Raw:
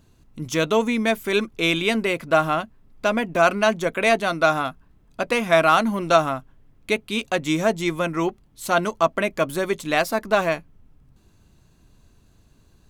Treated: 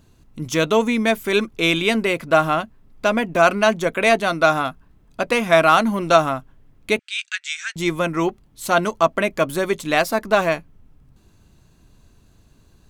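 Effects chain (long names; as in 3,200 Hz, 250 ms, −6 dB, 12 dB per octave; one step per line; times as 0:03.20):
0:06.99–0:07.76: Chebyshev band-pass filter 1,500–8,400 Hz, order 4
level +2.5 dB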